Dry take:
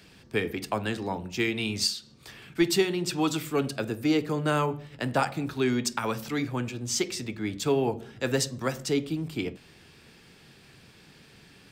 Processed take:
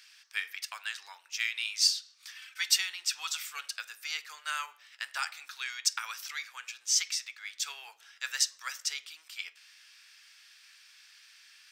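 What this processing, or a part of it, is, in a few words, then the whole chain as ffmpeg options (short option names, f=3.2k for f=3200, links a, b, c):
headphones lying on a table: -filter_complex "[0:a]highpass=f=1.4k:w=0.5412,highpass=f=1.4k:w=1.3066,equalizer=f=5.7k:t=o:w=0.43:g=7,asettb=1/sr,asplit=3[a][b][c];[a]atrim=end=2.354[d];[b]atrim=start=2.35:end=2.78,asetpts=PTS-STARTPTS,afade=t=in:d=0.004:c=qsin,afade=t=out:st=0.426:d=0.004:c=qsin,aecho=1:1:3.9:0.85,atrim=end_sample=18963[e];[c]atrim=start=2.776[f];[d][e]acrossfade=d=0.004:c1=hsin:c2=qsin[g];[g][f]acrossfade=d=0.004:c1=qsin:c2=hsin,volume=-1dB"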